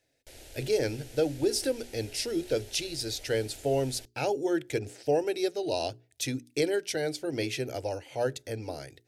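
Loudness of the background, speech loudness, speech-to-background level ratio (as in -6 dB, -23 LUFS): -49.5 LUFS, -31.0 LUFS, 18.5 dB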